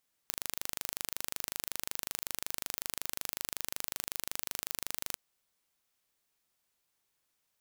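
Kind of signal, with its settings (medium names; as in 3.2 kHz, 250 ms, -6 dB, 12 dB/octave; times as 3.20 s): pulse train 25.4 per s, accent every 0, -7.5 dBFS 4.85 s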